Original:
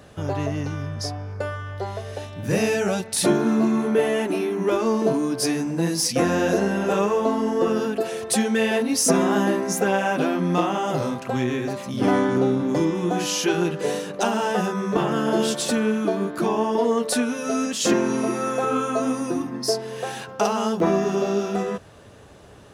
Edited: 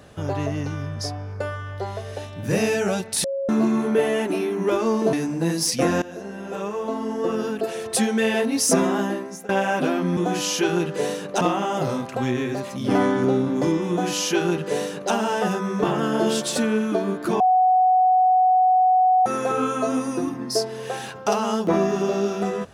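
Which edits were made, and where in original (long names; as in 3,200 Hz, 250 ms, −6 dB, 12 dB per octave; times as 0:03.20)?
0:03.24–0:03.49: beep over 548 Hz −23 dBFS
0:05.13–0:05.50: remove
0:06.39–0:08.30: fade in, from −18.5 dB
0:09.14–0:09.86: fade out, to −21 dB
0:13.02–0:14.26: duplicate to 0:10.54
0:16.53–0:18.39: beep over 742 Hz −13.5 dBFS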